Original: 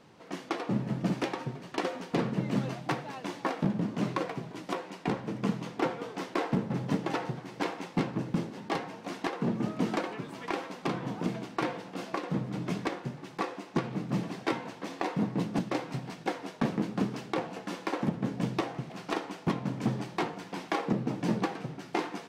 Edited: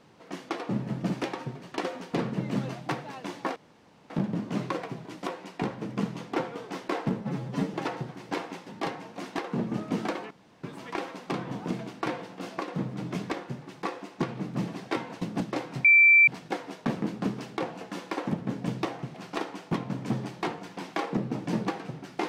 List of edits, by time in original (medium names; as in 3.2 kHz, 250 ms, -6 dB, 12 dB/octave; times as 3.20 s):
3.56 s: insert room tone 0.54 s
6.67–7.02 s: stretch 1.5×
7.95–8.55 s: delete
10.19 s: insert room tone 0.33 s
14.77–15.40 s: delete
16.03 s: add tone 2.34 kHz -13.5 dBFS 0.43 s